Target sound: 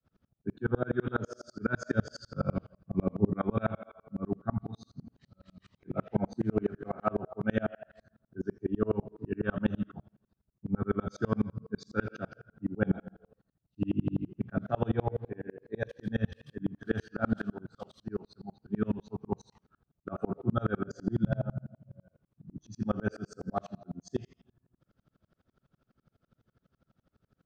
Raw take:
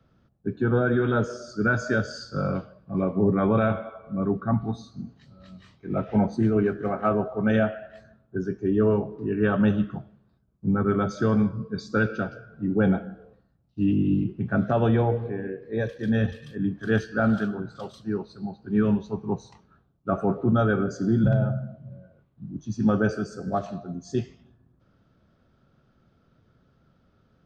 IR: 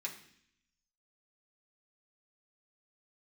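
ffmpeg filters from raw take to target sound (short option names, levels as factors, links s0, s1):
-filter_complex "[0:a]asettb=1/sr,asplit=3[s0][s1][s2];[s0]atrim=end=1.954[s3];[s1]atrim=start=1.95:end=3.27,asetpts=PTS-STARTPTS,afade=t=in:d=0.004:c=qsin,afade=t=out:st=1.316:d=0.004:c=qsin,lowshelf=f=230:g=7[s4];[s2]atrim=start=3.266[s5];[s3][s4]acrossfade=d=0.004:c1=hsin:c2=qsin[s6];[s6][s5]acrossfade=d=0.004:c1=qsin:c2=hsin,aeval=exprs='val(0)*pow(10,-35*if(lt(mod(-12*n/s,1),2*abs(-12)/1000),1-mod(-12*n/s,1)/(2*abs(-12)/1000),(mod(-12*n/s,1)-2*abs(-12)/1000)/(1-2*abs(-12)/1000))/20)':c=same"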